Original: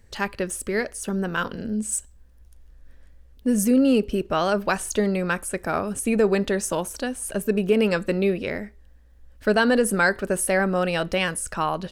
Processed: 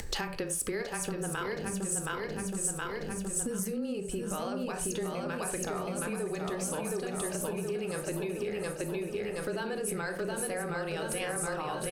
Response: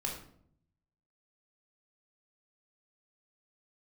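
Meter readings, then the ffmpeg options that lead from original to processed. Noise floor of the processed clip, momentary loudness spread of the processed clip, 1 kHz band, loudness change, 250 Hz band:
−39 dBFS, 3 LU, −10.0 dB, −10.5 dB, −12.5 dB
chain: -filter_complex "[0:a]aecho=1:1:721|1442|2163|2884|3605|4326|5047:0.631|0.328|0.171|0.0887|0.0461|0.024|0.0125,alimiter=limit=-16.5dB:level=0:latency=1:release=43,asplit=2[link_01][link_02];[link_02]equalizer=frequency=770:width=0.59:gain=9.5[link_03];[1:a]atrim=start_sample=2205,atrim=end_sample=4410,lowshelf=frequency=410:gain=6[link_04];[link_03][link_04]afir=irnorm=-1:irlink=0,volume=-8dB[link_05];[link_01][link_05]amix=inputs=2:normalize=0,acompressor=mode=upward:threshold=-24dB:ratio=2.5,afreqshift=-18,acompressor=threshold=-30dB:ratio=6,highshelf=frequency=2700:gain=7.5,volume=-3dB"

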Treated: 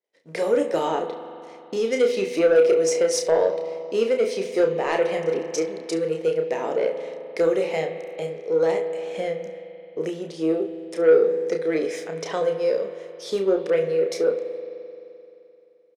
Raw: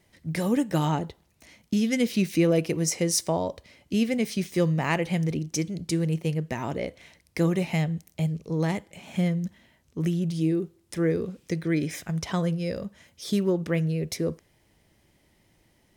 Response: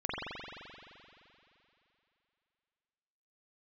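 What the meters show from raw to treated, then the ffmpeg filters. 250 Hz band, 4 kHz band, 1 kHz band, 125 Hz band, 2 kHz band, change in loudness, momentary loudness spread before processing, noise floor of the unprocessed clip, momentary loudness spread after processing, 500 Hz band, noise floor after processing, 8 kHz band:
−4.5 dB, 0.0 dB, +4.0 dB, −15.0 dB, +2.0 dB, +4.0 dB, 10 LU, −66 dBFS, 14 LU, +10.5 dB, −51 dBFS, −1.5 dB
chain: -filter_complex "[0:a]aeval=exprs='if(lt(val(0),0),0.708*val(0),val(0))':channel_layout=same,highpass=frequency=460:width_type=q:width=4.6,agate=range=-33dB:threshold=-49dB:ratio=3:detection=peak,asplit=2[link_01][link_02];[1:a]atrim=start_sample=2205,highshelf=frequency=8900:gain=11.5[link_03];[link_02][link_03]afir=irnorm=-1:irlink=0,volume=-16dB[link_04];[link_01][link_04]amix=inputs=2:normalize=0,asoftclip=type=tanh:threshold=-12dB,lowpass=7500,aecho=1:1:31|70:0.531|0.133"

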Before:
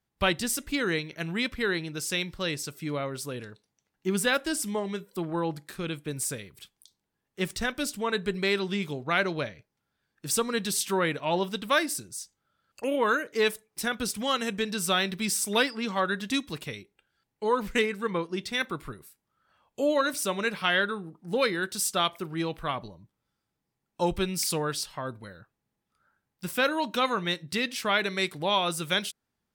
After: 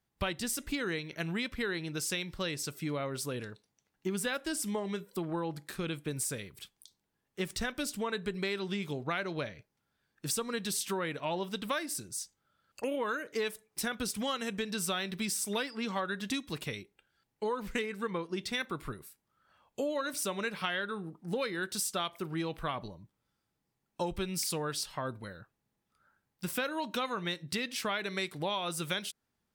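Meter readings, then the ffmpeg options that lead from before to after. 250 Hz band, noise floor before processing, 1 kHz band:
−5.0 dB, −83 dBFS, −7.5 dB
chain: -af "acompressor=threshold=-31dB:ratio=5"

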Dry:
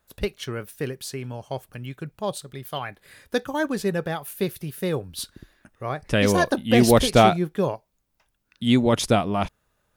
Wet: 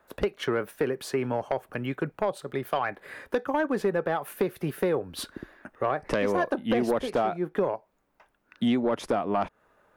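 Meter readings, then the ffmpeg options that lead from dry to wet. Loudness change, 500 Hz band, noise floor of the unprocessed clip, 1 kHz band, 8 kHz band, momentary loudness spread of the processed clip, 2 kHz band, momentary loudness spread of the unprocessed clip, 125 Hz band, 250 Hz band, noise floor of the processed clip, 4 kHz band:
−5.5 dB, −3.0 dB, −72 dBFS, −4.0 dB, −12.5 dB, 8 LU, −4.5 dB, 18 LU, −10.5 dB, −5.5 dB, −71 dBFS, −10.5 dB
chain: -filter_complex "[0:a]acrossover=split=240 2100:gain=0.178 1 0.141[link_01][link_02][link_03];[link_01][link_02][link_03]amix=inputs=3:normalize=0,acompressor=threshold=-32dB:ratio=12,aeval=exprs='0.0944*sin(PI/2*1.58*val(0)/0.0944)':channel_layout=same,volume=3.5dB"

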